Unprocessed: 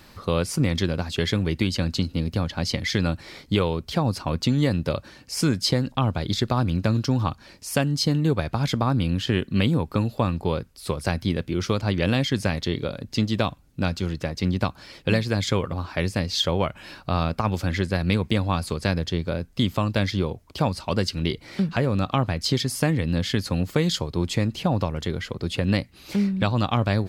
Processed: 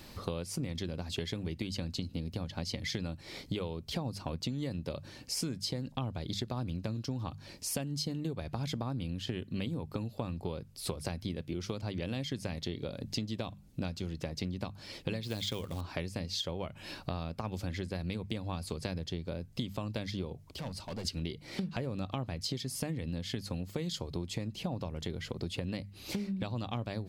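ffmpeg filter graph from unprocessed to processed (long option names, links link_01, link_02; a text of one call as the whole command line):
ffmpeg -i in.wav -filter_complex "[0:a]asettb=1/sr,asplit=3[link_01][link_02][link_03];[link_01]atrim=end=15.234[link_04];[link_02]atrim=start=15.23:end=15.81,asetpts=PTS-STARTPTS,afade=type=in:duration=0.004:curve=qsin,afade=type=out:start_time=0.576:duration=0.004:curve=qsin,equalizer=frequency=3400:width_type=o:width=0.65:gain=9.5,acrusher=bits=4:mode=log:mix=0:aa=0.000001[link_05];[link_03]atrim=start=15.806[link_06];[link_04][link_05]acrossfade=duration=0.004:curve1=hsin:curve2=qsin[link_07];[link_07][link_06]acrossfade=duration=0.004:curve1=qsin:curve2=hsin,asettb=1/sr,asplit=3[link_08][link_09][link_10];[link_08]atrim=end=20.454[link_11];[link_09]atrim=start=20.45:end=21.05,asetpts=PTS-STARTPTS,afade=type=in:duration=0.004:curve=qsin,afade=type=out:start_time=0.596:duration=0.004:curve=qsin,acompressor=threshold=-50dB:ratio=1.5:attack=3.2:release=140:knee=1:detection=peak,asoftclip=type=hard:threshold=-34dB[link_12];[link_10]atrim=start=21.046[link_13];[link_11][link_12]acrossfade=duration=0.004:curve1=hsin:curve2=qsin[link_14];[link_14][link_13]acrossfade=duration=0.004:curve1=qsin:curve2=hsin,equalizer=frequency=1400:width=1.2:gain=-6.5,bandreject=frequency=50:width_type=h:width=6,bandreject=frequency=100:width_type=h:width=6,bandreject=frequency=150:width_type=h:width=6,bandreject=frequency=200:width_type=h:width=6,acompressor=threshold=-33dB:ratio=8" out.wav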